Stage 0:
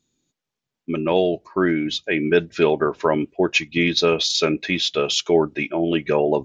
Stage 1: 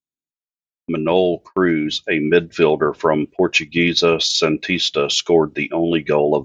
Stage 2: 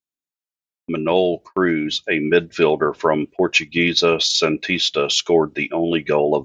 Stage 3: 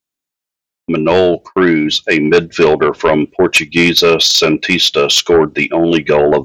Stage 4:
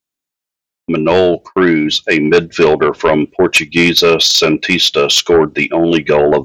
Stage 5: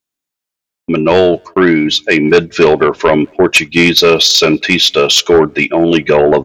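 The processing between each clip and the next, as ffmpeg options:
-af "agate=range=-31dB:threshold=-38dB:ratio=16:detection=peak,volume=3dB"
-af "lowshelf=f=350:g=-3.5"
-af "aeval=exprs='0.794*sin(PI/2*2*val(0)/0.794)':c=same,volume=-1dB"
-af anull
-filter_complex "[0:a]asplit=2[a][b];[b]adelay=190,highpass=300,lowpass=3.4k,asoftclip=type=hard:threshold=-11.5dB,volume=-30dB[c];[a][c]amix=inputs=2:normalize=0,volume=1.5dB"

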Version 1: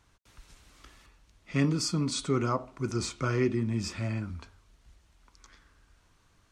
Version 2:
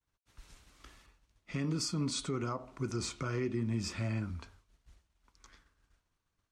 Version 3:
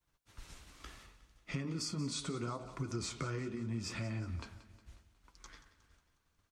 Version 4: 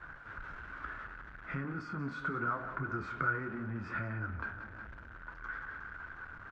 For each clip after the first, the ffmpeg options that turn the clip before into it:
-af "agate=range=-33dB:threshold=-53dB:ratio=3:detection=peak,alimiter=limit=-24dB:level=0:latency=1:release=176,volume=-1.5dB"
-af "acompressor=threshold=-41dB:ratio=5,flanger=delay=5.6:depth=9:regen=-45:speed=0.74:shape=sinusoidal,aecho=1:1:181|362|543|724|905:0.168|0.0873|0.0454|0.0236|0.0123,volume=8.5dB"
-filter_complex "[0:a]aeval=exprs='val(0)+0.5*0.00596*sgn(val(0))':c=same,lowpass=f=1.5k:t=q:w=8.8,asplit=2[a][b];[b]adelay=29,volume=-13dB[c];[a][c]amix=inputs=2:normalize=0,volume=-2.5dB"

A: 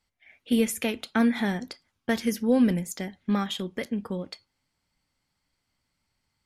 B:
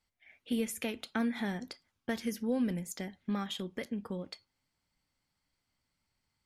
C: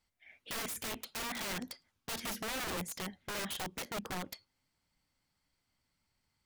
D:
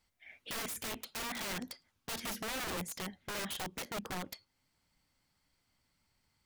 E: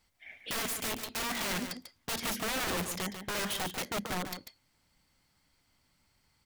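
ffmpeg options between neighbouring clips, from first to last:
-af "acompressor=threshold=-33dB:ratio=1.5,volume=-4.5dB"
-af "aeval=exprs='(mod(53.1*val(0)+1,2)-1)/53.1':c=same,volume=1dB"
-af "alimiter=level_in=13.5dB:limit=-24dB:level=0:latency=1:release=410,volume=-13.5dB,volume=3.5dB"
-af "aecho=1:1:144:0.376,volume=5dB"

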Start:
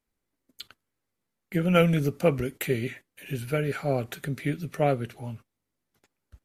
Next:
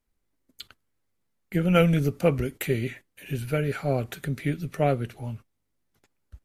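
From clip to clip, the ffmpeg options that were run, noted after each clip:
-af "lowshelf=f=76:g=10"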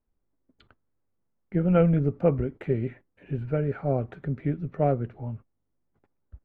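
-af "lowpass=1.1k"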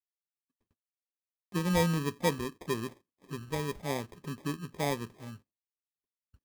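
-af "highpass=120,equalizer=f=130:t=q:w=4:g=-7,equalizer=f=650:t=q:w=4:g=-5,equalizer=f=940:t=q:w=4:g=-7,lowpass=f=2.4k:w=0.5412,lowpass=f=2.4k:w=1.3066,agate=range=-33dB:threshold=-53dB:ratio=3:detection=peak,acrusher=samples=31:mix=1:aa=0.000001,volume=-5dB"

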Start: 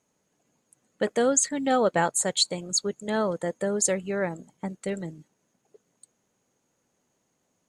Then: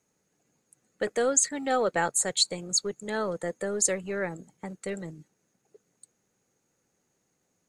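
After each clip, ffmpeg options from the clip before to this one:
-filter_complex "[0:a]equalizer=f=250:t=o:w=0.33:g=-4,equalizer=f=630:t=o:w=0.33:g=-5,equalizer=f=1k:t=o:w=0.33:g=-6,equalizer=f=3.15k:t=o:w=0.33:g=-5,acrossover=split=330[a][b];[a]asoftclip=type=hard:threshold=-38.5dB[c];[c][b]amix=inputs=2:normalize=0"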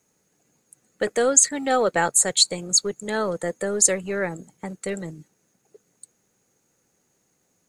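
-af "highshelf=f=8.1k:g=6,volume=5dB"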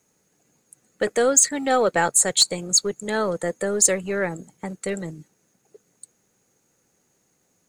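-af "asoftclip=type=tanh:threshold=-7dB,volume=1.5dB"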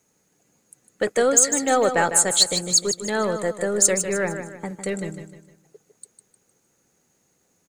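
-af "aecho=1:1:153|306|459|612:0.355|0.138|0.054|0.021"

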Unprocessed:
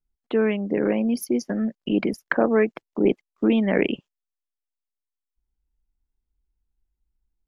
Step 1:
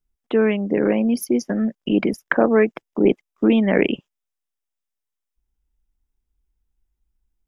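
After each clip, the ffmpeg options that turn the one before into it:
-af "bandreject=f=4.3k:w=6.6,volume=3.5dB"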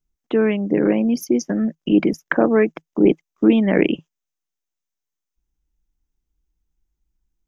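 -af "equalizer=f=160:t=o:w=0.33:g=8,equalizer=f=315:t=o:w=0.33:g=6,equalizer=f=6.3k:t=o:w=0.33:g=8,equalizer=f=10k:t=o:w=0.33:g=-10,volume=-1dB"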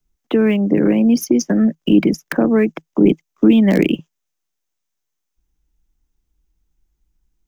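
-filter_complex "[0:a]acrossover=split=270|3000[a][b][c];[b]acompressor=threshold=-24dB:ratio=6[d];[a][d][c]amix=inputs=3:normalize=0,acrossover=split=280|980|1800[e][f][g][h];[g]aeval=exprs='(mod(28.2*val(0)+1,2)-1)/28.2':c=same[i];[h]acrusher=bits=5:mode=log:mix=0:aa=0.000001[j];[e][f][i][j]amix=inputs=4:normalize=0,volume=6.5dB"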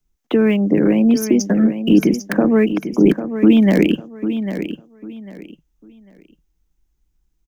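-af "aecho=1:1:798|1596|2394:0.316|0.0791|0.0198"

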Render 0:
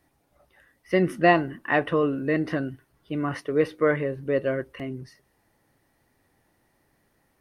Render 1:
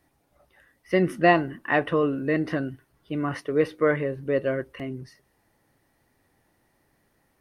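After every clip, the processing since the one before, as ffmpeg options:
-af anull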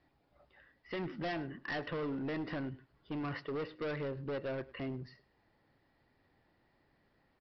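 -af "acompressor=threshold=-29dB:ratio=2,aresample=11025,asoftclip=type=hard:threshold=-30dB,aresample=44100,aecho=1:1:104:0.1,volume=-4.5dB"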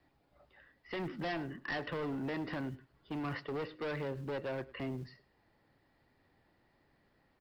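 -filter_complex "[0:a]acrossover=split=190|760|1900[a][b][c][d];[a]acrusher=bits=6:mode=log:mix=0:aa=0.000001[e];[b]aeval=exprs='clip(val(0),-1,0.00891)':c=same[f];[e][f][c][d]amix=inputs=4:normalize=0,volume=1dB"

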